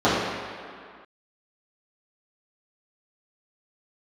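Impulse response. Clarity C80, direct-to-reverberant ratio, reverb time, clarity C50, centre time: 1.0 dB, -12.5 dB, not exponential, -1.0 dB, 0.115 s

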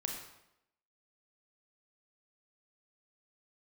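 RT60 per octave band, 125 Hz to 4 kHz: 0.75, 0.85, 0.85, 0.80, 0.75, 0.70 s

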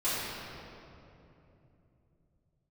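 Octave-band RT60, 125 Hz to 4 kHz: 5.0, 4.0, 3.3, 2.6, 2.2, 1.7 s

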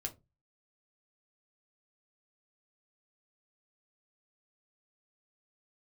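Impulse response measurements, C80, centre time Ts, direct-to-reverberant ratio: 27.0 dB, 7 ms, 2.5 dB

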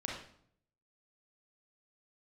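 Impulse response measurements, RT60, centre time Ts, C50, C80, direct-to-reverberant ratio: 0.65 s, 45 ms, 2.0 dB, 6.5 dB, -2.5 dB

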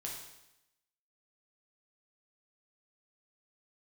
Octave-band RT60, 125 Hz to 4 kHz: 0.90, 0.90, 0.90, 0.90, 0.90, 0.90 s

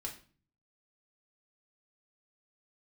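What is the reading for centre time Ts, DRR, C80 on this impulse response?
17 ms, -1.0 dB, 15.0 dB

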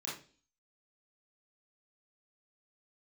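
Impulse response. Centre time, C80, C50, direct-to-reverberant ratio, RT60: 40 ms, 11.0 dB, 4.0 dB, -8.0 dB, 0.40 s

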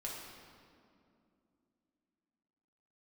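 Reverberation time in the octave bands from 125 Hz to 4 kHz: 3.0, 3.9, 2.8, 2.2, 1.8, 1.5 s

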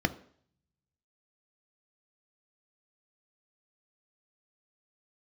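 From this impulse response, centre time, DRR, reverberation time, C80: 6 ms, 9.5 dB, 0.60 s, 20.5 dB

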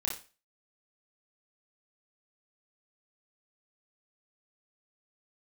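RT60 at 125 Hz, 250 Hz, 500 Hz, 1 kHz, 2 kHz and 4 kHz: 0.30, 0.30, 0.35, 0.35, 0.35, 0.35 s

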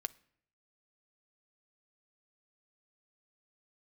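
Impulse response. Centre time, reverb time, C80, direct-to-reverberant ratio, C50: 2 ms, 0.65 s, 26.0 dB, 12.5 dB, 22.0 dB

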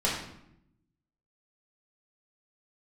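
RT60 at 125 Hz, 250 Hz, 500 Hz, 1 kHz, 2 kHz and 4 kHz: 1.2, 1.1, 0.85, 0.75, 0.70, 0.55 s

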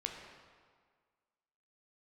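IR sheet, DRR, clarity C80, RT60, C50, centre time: 1.5 dB, 5.0 dB, 1.7 s, 3.5 dB, 58 ms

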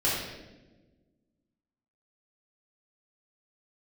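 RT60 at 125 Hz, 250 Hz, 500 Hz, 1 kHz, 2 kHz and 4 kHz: 1.9, 2.0, 1.5, 0.90, 0.90, 0.85 s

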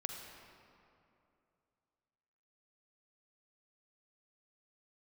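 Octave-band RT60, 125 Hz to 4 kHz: 2.9, 2.8, 2.8, 2.6, 2.1, 1.6 s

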